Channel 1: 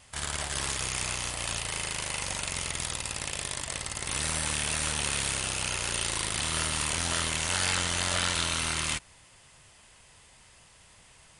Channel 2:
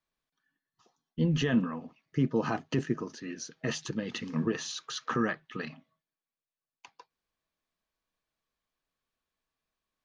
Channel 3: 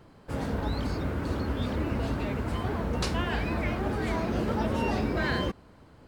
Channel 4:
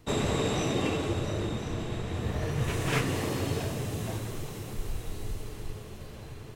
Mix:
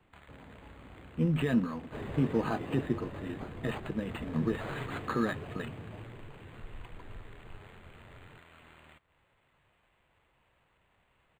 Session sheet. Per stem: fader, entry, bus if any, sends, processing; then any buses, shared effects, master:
−13.0 dB, 0.00 s, no send, echo send −21 dB, downward compressor 8 to 1, threshold −38 dBFS, peak gain reduction 14.5 dB
−1.0 dB, 0.00 s, no send, no echo send, no processing
−15.0 dB, 0.00 s, no send, no echo send, downward compressor, threshold −34 dBFS, peak gain reduction 10.5 dB
−11.5 dB, 1.85 s, no send, no echo send, pitch vibrato 3.6 Hz 97 cents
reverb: not used
echo: single-tap delay 226 ms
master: linearly interpolated sample-rate reduction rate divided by 8×

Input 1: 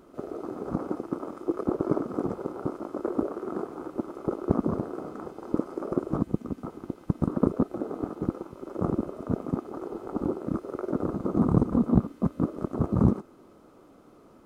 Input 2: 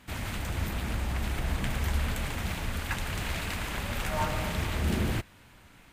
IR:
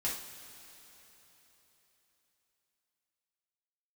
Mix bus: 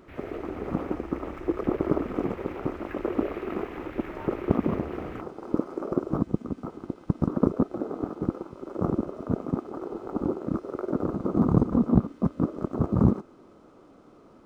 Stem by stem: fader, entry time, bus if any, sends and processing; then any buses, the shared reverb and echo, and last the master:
+1.0 dB, 0.00 s, no send, no processing
−11.5 dB, 0.00 s, no send, soft clipping −24 dBFS, distortion −17 dB; low-pass with resonance 2,200 Hz, resonance Q 1.6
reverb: not used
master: linearly interpolated sample-rate reduction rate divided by 3×

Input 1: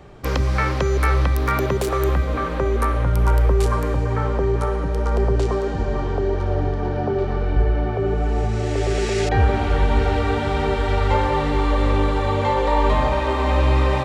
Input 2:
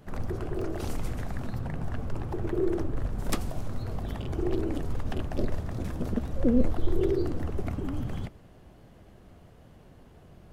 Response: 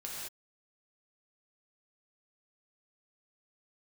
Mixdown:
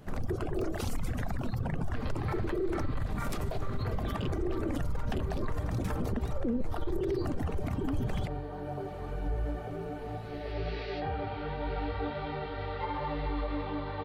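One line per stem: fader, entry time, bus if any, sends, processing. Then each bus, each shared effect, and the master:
−11.0 dB, 1.70 s, no send, elliptic low-pass filter 4,500 Hz, stop band 50 dB; comb filter 6.6 ms, depth 56%; micro pitch shift up and down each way 27 cents
+1.5 dB, 0.00 s, no send, reverb reduction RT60 1.5 s; brickwall limiter −22 dBFS, peak gain reduction 10.5 dB; automatic gain control gain up to 6.5 dB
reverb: not used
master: brickwall limiter −24 dBFS, peak gain reduction 11 dB

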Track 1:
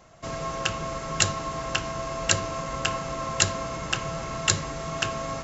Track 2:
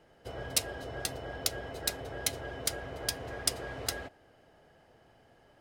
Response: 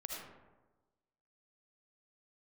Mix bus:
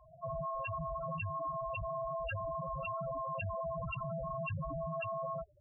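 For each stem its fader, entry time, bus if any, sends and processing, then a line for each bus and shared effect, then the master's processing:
+1.0 dB, 0.00 s, no send, low-pass filter 4,000 Hz 12 dB per octave
−3.0 dB, 0.00 s, send −5.5 dB, sub-octave generator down 2 octaves, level 0 dB; low-pass filter 5,900 Hz 12 dB per octave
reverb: on, RT60 1.2 s, pre-delay 35 ms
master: spectral peaks only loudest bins 4; brickwall limiter −32 dBFS, peak gain reduction 11 dB

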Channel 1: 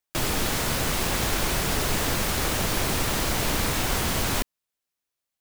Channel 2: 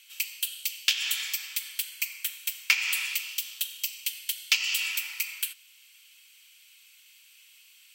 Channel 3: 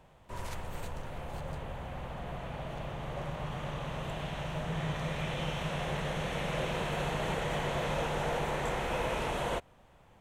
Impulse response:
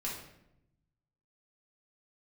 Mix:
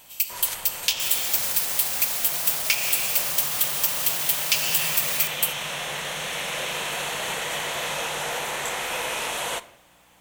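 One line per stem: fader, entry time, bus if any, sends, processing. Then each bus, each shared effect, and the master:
−7.5 dB, 0.85 s, no send, brickwall limiter −20.5 dBFS, peak gain reduction 8 dB
−8.0 dB, 0.00 s, no send, no processing
+3.0 dB, 0.00 s, send −13.5 dB, mains hum 60 Hz, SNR 22 dB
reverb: on, RT60 0.80 s, pre-delay 4 ms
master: spectral tilt +4.5 dB per octave

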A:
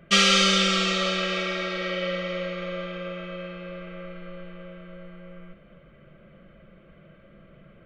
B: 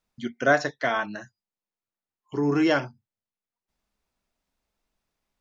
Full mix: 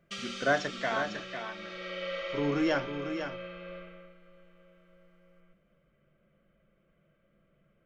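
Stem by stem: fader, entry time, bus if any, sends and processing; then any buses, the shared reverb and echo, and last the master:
0:01.52 −15.5 dB → 0:02.18 −5 dB → 0:03.77 −5 dB → 0:04.17 −17 dB, 0.00 s, no send, no echo send, downward compressor 4 to 1, threshold −23 dBFS, peak gain reduction 7.5 dB
−6.5 dB, 0.00 s, no send, echo send −8 dB, no processing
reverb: not used
echo: single-tap delay 500 ms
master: mains-hum notches 60/120/180/240/300/360 Hz

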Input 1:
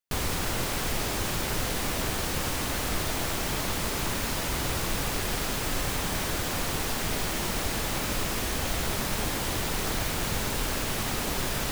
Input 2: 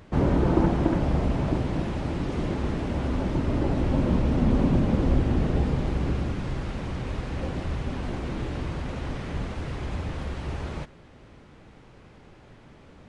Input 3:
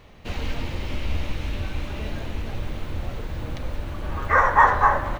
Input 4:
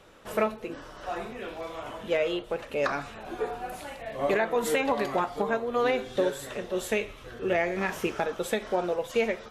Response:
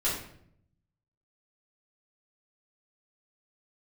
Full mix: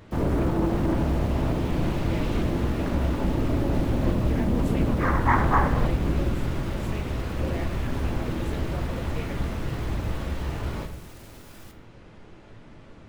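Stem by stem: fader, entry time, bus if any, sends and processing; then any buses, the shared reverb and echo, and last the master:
−16.5 dB, 0.00 s, send −13 dB, high-shelf EQ 10,000 Hz +5.5 dB; brickwall limiter −26 dBFS, peak gain reduction 10.5 dB
−2.5 dB, 0.00 s, send −9 dB, brickwall limiter −18 dBFS, peak gain reduction 9.5 dB
−1.5 dB, 0.70 s, no send, tremolo with a ramp in dB swelling 0.58 Hz, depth 19 dB
−13.5 dB, 0.00 s, no send, no processing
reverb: on, RT60 0.65 s, pre-delay 3 ms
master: highs frequency-modulated by the lows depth 0.35 ms

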